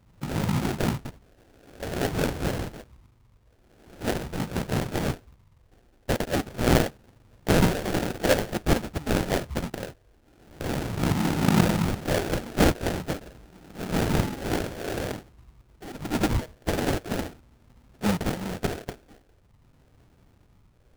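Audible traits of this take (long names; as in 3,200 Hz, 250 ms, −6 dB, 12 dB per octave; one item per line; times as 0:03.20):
phaser sweep stages 4, 0.46 Hz, lowest notch 150–1,400 Hz
aliases and images of a low sample rate 1,100 Hz, jitter 20%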